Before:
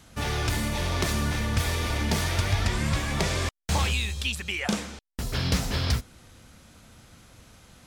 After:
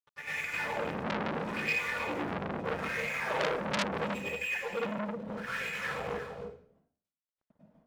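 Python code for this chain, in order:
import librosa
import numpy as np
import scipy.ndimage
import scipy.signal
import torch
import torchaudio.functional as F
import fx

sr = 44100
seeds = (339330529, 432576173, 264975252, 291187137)

p1 = scipy.signal.sosfilt(scipy.signal.butter(2, 3400.0, 'lowpass', fs=sr, output='sos'), x)
p2 = fx.peak_eq(p1, sr, hz=170.0, db=10.5, octaves=1.1)
p3 = fx.chopper(p2, sr, hz=2.3, depth_pct=60, duty_pct=70)
p4 = fx.granulator(p3, sr, seeds[0], grain_ms=100.0, per_s=20.0, spray_ms=100.0, spread_st=0)
p5 = fx.small_body(p4, sr, hz=(480.0, 2500.0), ring_ms=75, db=16)
p6 = fx.wah_lfo(p5, sr, hz=0.76, low_hz=210.0, high_hz=2300.0, q=6.9)
p7 = np.sign(p6) * np.maximum(np.abs(p6) - 10.0 ** (-56.0 / 20.0), 0.0)
p8 = p7 + fx.echo_single(p7, sr, ms=313, db=-8.5, dry=0)
p9 = fx.rev_plate(p8, sr, seeds[1], rt60_s=0.54, hf_ratio=0.9, predelay_ms=85, drr_db=-9.5)
p10 = fx.transformer_sat(p9, sr, knee_hz=3600.0)
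y = F.gain(torch.from_numpy(p10), 2.5).numpy()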